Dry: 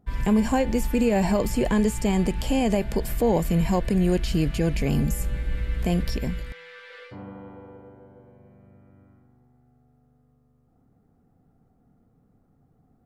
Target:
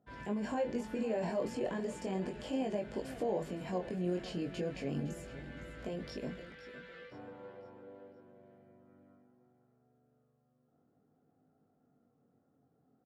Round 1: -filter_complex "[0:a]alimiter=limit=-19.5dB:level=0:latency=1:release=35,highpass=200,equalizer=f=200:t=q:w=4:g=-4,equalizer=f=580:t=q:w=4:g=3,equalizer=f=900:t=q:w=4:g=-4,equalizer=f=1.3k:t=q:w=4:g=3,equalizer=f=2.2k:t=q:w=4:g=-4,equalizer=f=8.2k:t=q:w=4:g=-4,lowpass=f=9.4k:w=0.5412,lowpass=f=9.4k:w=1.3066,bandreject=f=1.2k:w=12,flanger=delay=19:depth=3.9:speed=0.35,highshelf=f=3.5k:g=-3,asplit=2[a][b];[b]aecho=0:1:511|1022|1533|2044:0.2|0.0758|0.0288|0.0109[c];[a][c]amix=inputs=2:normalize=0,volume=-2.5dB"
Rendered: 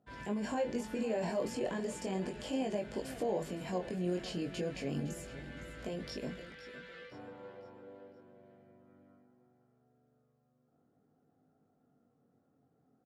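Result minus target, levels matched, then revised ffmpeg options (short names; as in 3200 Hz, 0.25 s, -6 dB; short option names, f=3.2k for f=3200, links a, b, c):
8000 Hz band +6.0 dB
-filter_complex "[0:a]alimiter=limit=-19.5dB:level=0:latency=1:release=35,highpass=200,equalizer=f=200:t=q:w=4:g=-4,equalizer=f=580:t=q:w=4:g=3,equalizer=f=900:t=q:w=4:g=-4,equalizer=f=1.3k:t=q:w=4:g=3,equalizer=f=2.2k:t=q:w=4:g=-4,equalizer=f=8.2k:t=q:w=4:g=-4,lowpass=f=9.4k:w=0.5412,lowpass=f=9.4k:w=1.3066,bandreject=f=1.2k:w=12,flanger=delay=19:depth=3.9:speed=0.35,highshelf=f=3.5k:g=-10,asplit=2[a][b];[b]aecho=0:1:511|1022|1533|2044:0.2|0.0758|0.0288|0.0109[c];[a][c]amix=inputs=2:normalize=0,volume=-2.5dB"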